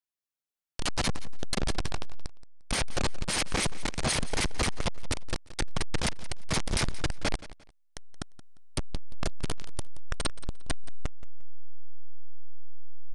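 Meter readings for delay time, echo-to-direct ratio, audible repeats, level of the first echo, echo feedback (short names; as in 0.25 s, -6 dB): 0.175 s, -17.0 dB, 2, -17.0 dB, 25%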